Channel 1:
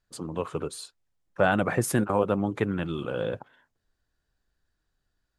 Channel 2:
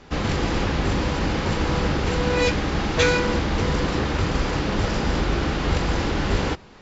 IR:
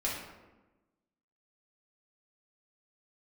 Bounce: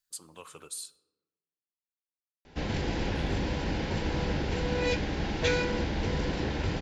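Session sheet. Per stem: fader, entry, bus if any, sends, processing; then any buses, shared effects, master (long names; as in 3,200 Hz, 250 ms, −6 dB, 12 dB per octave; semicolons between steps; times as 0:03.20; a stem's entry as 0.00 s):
+0.5 dB, 0.00 s, muted 0:00.96–0:03.15, send −19.5 dB, first-order pre-emphasis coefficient 0.9; downward compressor 2 to 1, threshold −41 dBFS, peak gain reduction 8 dB; tilt shelving filter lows −3.5 dB, about 670 Hz
−7.5 dB, 2.45 s, no send, low-pass filter 6,700 Hz 12 dB per octave; parametric band 1,200 Hz −14 dB 0.23 octaves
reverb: on, RT60 1.1 s, pre-delay 3 ms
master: no processing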